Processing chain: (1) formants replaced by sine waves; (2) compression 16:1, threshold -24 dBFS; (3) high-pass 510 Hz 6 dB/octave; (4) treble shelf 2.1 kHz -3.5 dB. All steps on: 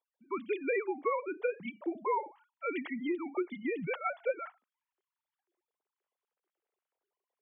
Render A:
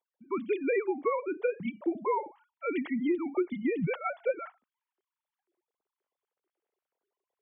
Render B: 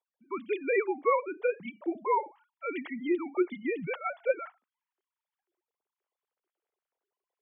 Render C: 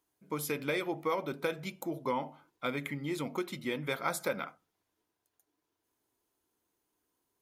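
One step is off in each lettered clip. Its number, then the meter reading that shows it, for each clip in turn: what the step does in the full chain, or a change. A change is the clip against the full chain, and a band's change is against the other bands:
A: 3, 125 Hz band +8.0 dB; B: 2, mean gain reduction 2.0 dB; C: 1, 125 Hz band +11.5 dB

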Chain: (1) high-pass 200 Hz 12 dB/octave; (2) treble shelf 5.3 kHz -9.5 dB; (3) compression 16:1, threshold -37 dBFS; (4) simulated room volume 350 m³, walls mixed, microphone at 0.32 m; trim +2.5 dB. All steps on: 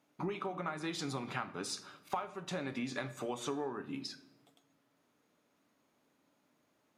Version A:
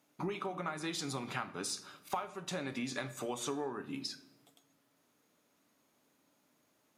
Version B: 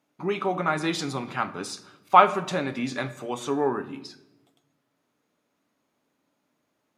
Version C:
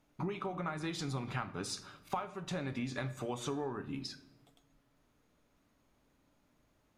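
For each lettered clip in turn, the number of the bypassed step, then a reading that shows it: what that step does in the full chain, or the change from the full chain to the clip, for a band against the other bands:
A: 2, 8 kHz band +4.5 dB; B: 3, mean gain reduction 9.5 dB; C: 1, 125 Hz band +6.0 dB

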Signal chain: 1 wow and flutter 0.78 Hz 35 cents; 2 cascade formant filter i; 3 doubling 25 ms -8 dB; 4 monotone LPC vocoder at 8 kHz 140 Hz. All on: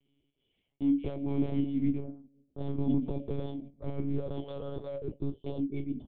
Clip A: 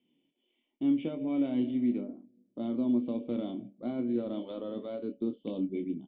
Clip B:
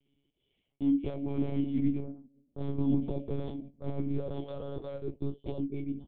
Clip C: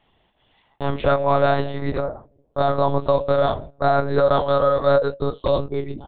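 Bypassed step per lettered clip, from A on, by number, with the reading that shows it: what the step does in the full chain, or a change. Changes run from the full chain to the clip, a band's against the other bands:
4, 125 Hz band -12.5 dB; 1, crest factor change +1.5 dB; 2, 1 kHz band +20.5 dB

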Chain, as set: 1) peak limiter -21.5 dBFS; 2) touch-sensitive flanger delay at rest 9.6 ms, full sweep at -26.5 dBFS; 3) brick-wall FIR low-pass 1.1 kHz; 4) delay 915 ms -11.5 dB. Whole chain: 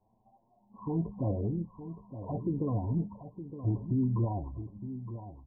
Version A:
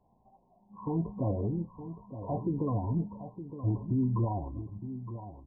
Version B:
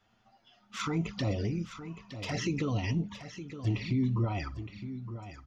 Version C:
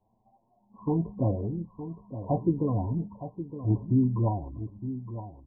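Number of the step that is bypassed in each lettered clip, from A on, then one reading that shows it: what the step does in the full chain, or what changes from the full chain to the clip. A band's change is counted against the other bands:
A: 2, 1 kHz band +3.5 dB; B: 3, 1 kHz band +2.0 dB; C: 1, mean gain reduction 1.5 dB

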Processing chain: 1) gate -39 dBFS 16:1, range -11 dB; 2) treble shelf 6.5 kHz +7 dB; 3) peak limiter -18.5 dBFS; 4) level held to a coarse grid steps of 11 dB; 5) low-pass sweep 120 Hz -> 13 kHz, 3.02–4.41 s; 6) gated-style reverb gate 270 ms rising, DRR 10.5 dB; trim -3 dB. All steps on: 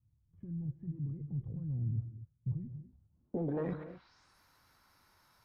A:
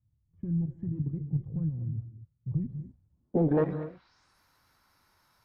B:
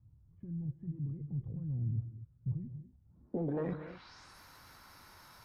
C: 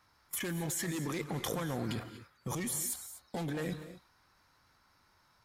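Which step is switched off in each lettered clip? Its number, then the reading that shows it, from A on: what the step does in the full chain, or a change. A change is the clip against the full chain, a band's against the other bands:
3, mean gain reduction 3.5 dB; 1, momentary loudness spread change +5 LU; 5, 2 kHz band +14.5 dB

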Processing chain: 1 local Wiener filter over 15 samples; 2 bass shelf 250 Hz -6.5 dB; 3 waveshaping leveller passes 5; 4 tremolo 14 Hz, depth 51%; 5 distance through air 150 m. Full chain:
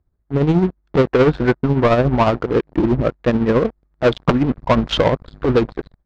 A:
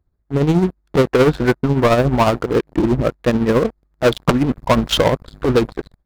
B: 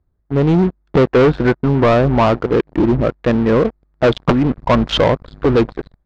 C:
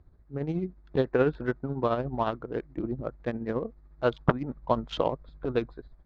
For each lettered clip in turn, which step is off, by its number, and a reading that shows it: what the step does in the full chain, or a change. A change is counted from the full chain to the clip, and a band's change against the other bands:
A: 5, 4 kHz band +3.0 dB; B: 4, crest factor change -2.0 dB; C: 3, crest factor change +12.0 dB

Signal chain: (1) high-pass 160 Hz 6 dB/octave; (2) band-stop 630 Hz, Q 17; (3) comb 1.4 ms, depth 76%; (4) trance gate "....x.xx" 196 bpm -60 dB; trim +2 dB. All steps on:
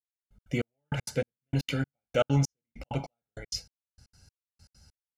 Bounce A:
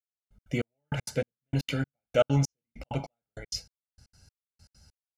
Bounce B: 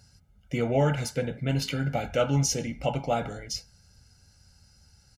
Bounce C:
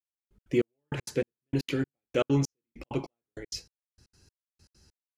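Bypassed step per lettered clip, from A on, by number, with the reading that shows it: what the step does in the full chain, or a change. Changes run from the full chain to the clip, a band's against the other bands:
2, 500 Hz band +2.0 dB; 4, 8 kHz band +5.5 dB; 3, 250 Hz band +5.0 dB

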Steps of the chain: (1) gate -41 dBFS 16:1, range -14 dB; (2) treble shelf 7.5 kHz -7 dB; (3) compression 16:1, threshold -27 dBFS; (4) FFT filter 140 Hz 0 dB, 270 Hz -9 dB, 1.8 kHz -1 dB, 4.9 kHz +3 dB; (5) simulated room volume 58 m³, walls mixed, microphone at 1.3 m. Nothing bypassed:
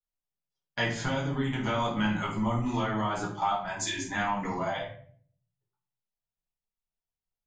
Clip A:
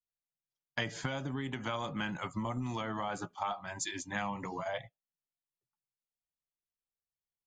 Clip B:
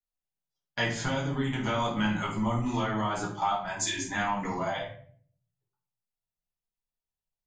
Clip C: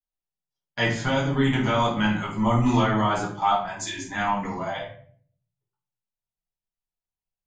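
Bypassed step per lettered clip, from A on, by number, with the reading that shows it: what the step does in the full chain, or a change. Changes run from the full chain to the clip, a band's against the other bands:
5, echo-to-direct 5.5 dB to none; 2, 8 kHz band +3.0 dB; 3, mean gain reduction 4.5 dB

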